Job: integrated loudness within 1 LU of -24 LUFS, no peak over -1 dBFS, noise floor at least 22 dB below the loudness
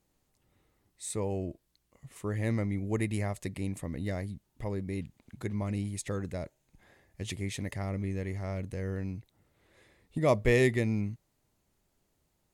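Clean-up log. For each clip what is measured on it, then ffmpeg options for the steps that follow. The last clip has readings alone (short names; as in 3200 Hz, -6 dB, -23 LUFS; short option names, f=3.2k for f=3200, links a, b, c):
loudness -33.5 LUFS; peak -12.5 dBFS; loudness target -24.0 LUFS
-> -af "volume=9.5dB"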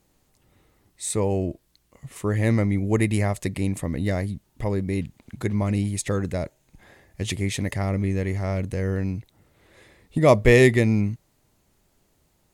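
loudness -24.0 LUFS; peak -3.0 dBFS; noise floor -67 dBFS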